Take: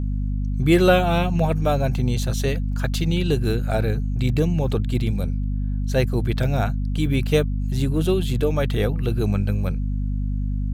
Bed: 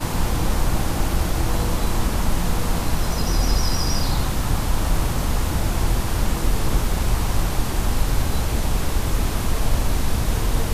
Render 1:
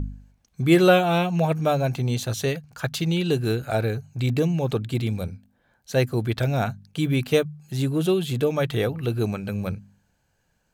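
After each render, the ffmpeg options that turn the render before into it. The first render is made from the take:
-af "bandreject=f=50:t=h:w=4,bandreject=f=100:t=h:w=4,bandreject=f=150:t=h:w=4,bandreject=f=200:t=h:w=4,bandreject=f=250:t=h:w=4"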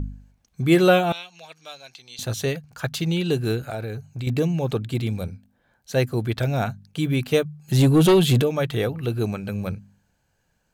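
-filter_complex "[0:a]asettb=1/sr,asplit=3[a][b][c];[a]atrim=end=1.124[d];[b]atrim=start=1.12:end=2.19,asetpts=PTS-STARTPTS,afade=t=in:d=0.004:c=qsin,afade=t=out:st=1.066:d=0.004:c=qsin,bandpass=f=4.4k:t=q:w=1.7[e];[c]atrim=start=2.186[f];[d][e]acrossfade=d=0.004:c1=hsin:c2=qsin[g];[g][f]acrossfade=d=0.004:c1=qsin:c2=hsin,asettb=1/sr,asplit=3[h][i][j];[h]atrim=end=3.644[k];[i]atrim=start=3.64:end=4.27,asetpts=PTS-STARTPTS,afade=t=in:d=0.004:c=qsin,afade=t=out:st=0.626:d=0.004:c=qsin,acompressor=threshold=-28dB:ratio=3:attack=3.2:release=140:knee=1:detection=peak[l];[j]atrim=start=4.266[m];[k][l]acrossfade=d=0.004:c1=hsin:c2=qsin[n];[n][m]acrossfade=d=0.004:c1=qsin:c2=hsin,asplit=3[o][p][q];[o]afade=t=out:st=7.67:d=0.02[r];[p]aeval=exprs='0.282*sin(PI/2*2*val(0)/0.282)':c=same,afade=t=in:st=7.67:d=0.02,afade=t=out:st=8.41:d=0.02[s];[q]afade=t=in:st=8.41:d=0.02[t];[r][s][t]amix=inputs=3:normalize=0"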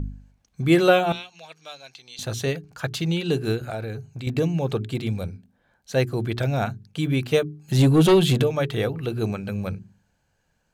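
-af "highshelf=f=12k:g=-9,bandreject=f=60:t=h:w=6,bandreject=f=120:t=h:w=6,bandreject=f=180:t=h:w=6,bandreject=f=240:t=h:w=6,bandreject=f=300:t=h:w=6,bandreject=f=360:t=h:w=6,bandreject=f=420:t=h:w=6"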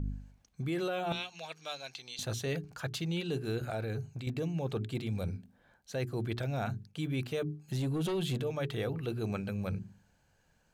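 -af "alimiter=limit=-15.5dB:level=0:latency=1:release=119,areverse,acompressor=threshold=-33dB:ratio=4,areverse"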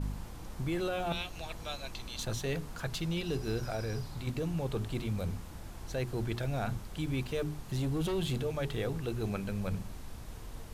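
-filter_complex "[1:a]volume=-24dB[a];[0:a][a]amix=inputs=2:normalize=0"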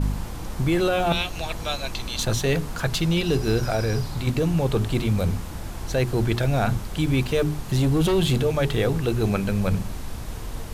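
-af "volume=12dB"

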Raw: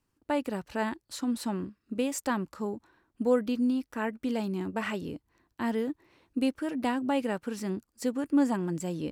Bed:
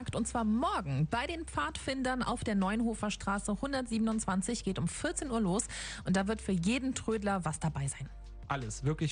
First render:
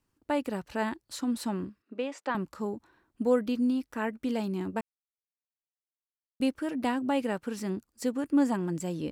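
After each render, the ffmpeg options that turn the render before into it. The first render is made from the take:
-filter_complex "[0:a]asettb=1/sr,asplit=3[a][b][c];[a]atrim=end=1.824[d];[b]atrim=start=1.82:end=2.35,asetpts=PTS-STARTPTS,afade=t=in:d=0.004:c=qsin,afade=t=out:st=0.526:d=0.004:c=qsin,highpass=380,lowpass=3.1k[e];[c]atrim=start=2.346[f];[d][e]acrossfade=d=0.004:c1=hsin:c2=qsin[g];[g][f]acrossfade=d=0.004:c1=qsin:c2=hsin,asplit=3[h][i][j];[h]atrim=end=4.81,asetpts=PTS-STARTPTS,afade=t=out:st=4.806:d=0.004:c=hsin[k];[i]atrim=start=4.81:end=6.4,asetpts=PTS-STARTPTS,volume=0[l];[j]atrim=start=6.4,asetpts=PTS-STARTPTS,afade=t=in:d=0.004:c=hsin[m];[k][l][m]concat=n=3:v=0:a=1"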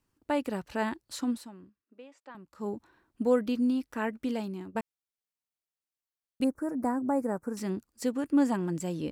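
-filter_complex "[0:a]asettb=1/sr,asplit=3[a][b][c];[a]atrim=end=6.444[d];[b]atrim=start=6.44:end=7.57,asetpts=PTS-STARTPTS,afade=t=in:d=0.004:c=qsin,afade=t=out:st=1.126:d=0.004:c=qsin,asuperstop=centerf=3200:order=4:qfactor=0.55[e];[c]atrim=start=7.566[f];[d][e]acrossfade=d=0.004:c1=hsin:c2=qsin[g];[g][f]acrossfade=d=0.004:c1=qsin:c2=hsin,asplit=4[h][i][j][k];[h]atrim=end=1.53,asetpts=PTS-STARTPTS,afade=t=out:st=1.3:d=0.23:c=qua:silence=0.149624[l];[i]atrim=start=1.53:end=2.45,asetpts=PTS-STARTPTS,volume=-16.5dB[m];[j]atrim=start=2.45:end=4.75,asetpts=PTS-STARTPTS,afade=t=in:d=0.23:c=qua:silence=0.149624,afade=t=out:st=1.77:d=0.53:silence=0.237137[n];[k]atrim=start=4.75,asetpts=PTS-STARTPTS,afade=t=in:d=0.004:c=hsin:silence=0.237137[o];[l][m][n][o]concat=n=4:v=0:a=1"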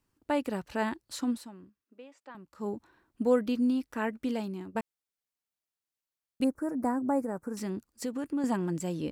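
-filter_complex "[0:a]asettb=1/sr,asplit=3[a][b][c];[a]atrim=end=7.204[d];[b]atrim=start=7.2:end=8.44,asetpts=PTS-STARTPTS,afade=t=in:d=0.004:c=qsin,afade=t=out:st=1.236:d=0.004:c=qsin,acompressor=threshold=-30dB:ratio=3:attack=3.2:release=140:knee=1:detection=peak[e];[c]atrim=start=8.436[f];[d][e]acrossfade=d=0.004:c1=hsin:c2=qsin[g];[g][f]acrossfade=d=0.004:c1=qsin:c2=hsin"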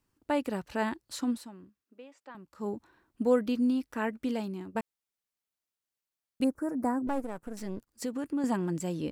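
-filter_complex "[0:a]asettb=1/sr,asplit=3[a][b][c];[a]atrim=end=7.074[d];[b]atrim=start=7.07:end=7.91,asetpts=PTS-STARTPTS,afade=t=in:d=0.004:c=qsin,afade=t=out:st=0.836:d=0.004:c=qsin,aeval=exprs='if(lt(val(0),0),0.251*val(0),val(0))':c=same[e];[c]atrim=start=7.906[f];[d][e]acrossfade=d=0.004:c1=hsin:c2=qsin[g];[g][f]acrossfade=d=0.004:c1=qsin:c2=hsin"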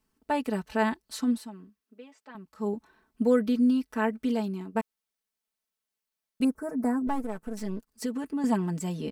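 -af "bandreject=f=7.2k:w=23,aecho=1:1:4.6:0.81"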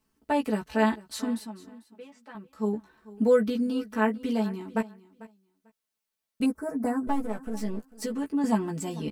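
-filter_complex "[0:a]asplit=2[a][b];[b]adelay=14,volume=-4dB[c];[a][c]amix=inputs=2:normalize=0,aecho=1:1:445|890:0.112|0.0191"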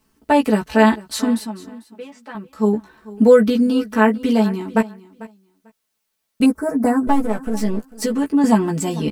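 -af "volume=11dB,alimiter=limit=-2dB:level=0:latency=1"

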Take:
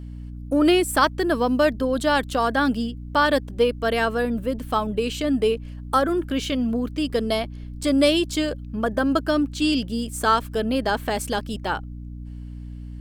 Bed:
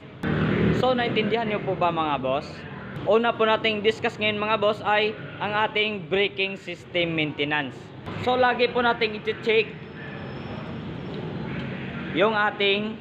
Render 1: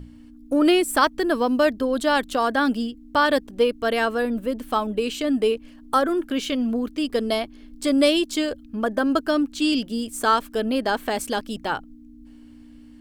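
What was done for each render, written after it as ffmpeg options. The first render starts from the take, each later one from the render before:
-af "bandreject=f=60:t=h:w=6,bandreject=f=120:t=h:w=6,bandreject=f=180:t=h:w=6"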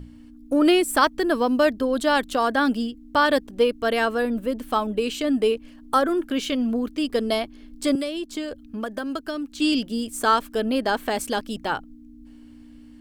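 -filter_complex "[0:a]asettb=1/sr,asplit=3[a][b][c];[a]atrim=end=7.954[d];[b]atrim=start=7.95:end=9.6,asetpts=PTS-STARTPTS,afade=t=in:d=0.004:c=qsin,afade=t=out:st=1.646:d=0.004:c=qsin,acrossover=split=190|2000[e][f][g];[e]acompressor=threshold=-44dB:ratio=4[h];[f]acompressor=threshold=-29dB:ratio=4[i];[g]acompressor=threshold=-39dB:ratio=4[j];[h][i][j]amix=inputs=3:normalize=0[k];[c]atrim=start=9.596[l];[d][k]acrossfade=d=0.004:c1=hsin:c2=qsin[m];[m][l]acrossfade=d=0.004:c1=qsin:c2=hsin"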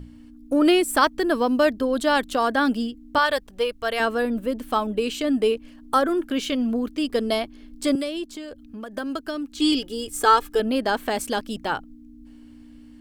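-filter_complex "[0:a]asettb=1/sr,asplit=3[a][b][c];[a]atrim=end=3.184[d];[b]atrim=start=3.18:end=4,asetpts=PTS-STARTPTS,afade=t=in:d=0.004:c=qsin,afade=t=out:st=0.816:d=0.004:c=qsin,equalizer=f=270:w=1.2:g=-13.5[e];[c]atrim=start=3.996[f];[d][e]acrossfade=d=0.004:c1=hsin:c2=qsin[g];[g][f]acrossfade=d=0.004:c1=qsin:c2=hsin,asplit=3[h][i][j];[h]afade=t=out:st=8.29:d=0.02[k];[i]acompressor=threshold=-42dB:ratio=1.5:attack=3.2:release=140:knee=1:detection=peak,afade=t=in:st=8.29:d=0.02,afade=t=out:st=8.92:d=0.02[l];[j]afade=t=in:st=8.92:d=0.02[m];[k][l][m]amix=inputs=3:normalize=0,asettb=1/sr,asplit=3[n][o][p];[n]atrim=end=9.574[q];[o]atrim=start=9.57:end=10.6,asetpts=PTS-STARTPTS,afade=t=in:d=0.004:c=qsin,afade=t=out:st=1.026:d=0.004:c=qsin,aecho=1:1:2.4:0.73,atrim=end_sample=45423[r];[p]atrim=start=10.596[s];[q][r]acrossfade=d=0.004:c1=hsin:c2=qsin[t];[t][s]acrossfade=d=0.004:c1=qsin:c2=hsin"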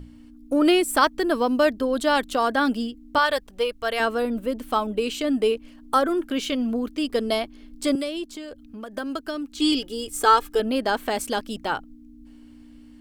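-af "equalizer=f=130:w=0.67:g=-2.5,bandreject=f=1.7k:w=23"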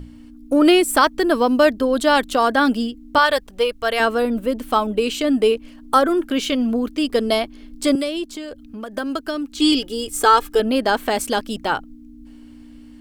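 -af "volume=5dB,alimiter=limit=-3dB:level=0:latency=1"

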